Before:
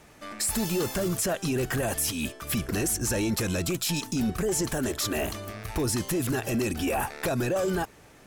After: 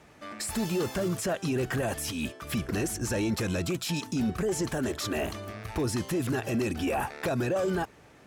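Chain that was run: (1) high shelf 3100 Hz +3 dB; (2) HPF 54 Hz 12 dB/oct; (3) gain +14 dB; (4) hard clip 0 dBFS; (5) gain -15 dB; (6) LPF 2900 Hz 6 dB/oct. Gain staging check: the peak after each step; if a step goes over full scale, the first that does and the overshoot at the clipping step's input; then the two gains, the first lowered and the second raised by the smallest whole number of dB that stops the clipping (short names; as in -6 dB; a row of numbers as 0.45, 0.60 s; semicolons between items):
-16.5, -15.5, -1.5, -1.5, -16.5, -19.0 dBFS; no overload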